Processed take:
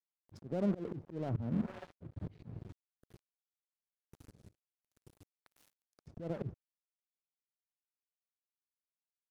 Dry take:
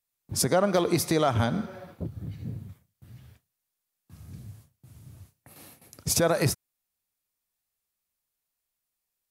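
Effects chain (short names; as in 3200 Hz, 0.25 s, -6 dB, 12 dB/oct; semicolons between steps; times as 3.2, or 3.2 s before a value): treble ducked by the level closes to 330 Hz, closed at -23.5 dBFS; crossover distortion -43.5 dBFS; auto swell 0.287 s; gain +1.5 dB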